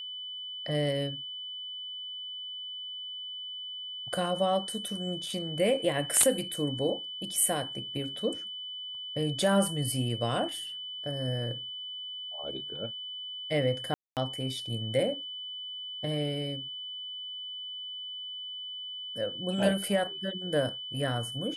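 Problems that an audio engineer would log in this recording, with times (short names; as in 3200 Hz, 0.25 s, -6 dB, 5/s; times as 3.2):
tone 3000 Hz -37 dBFS
13.94–14.17 gap 0.228 s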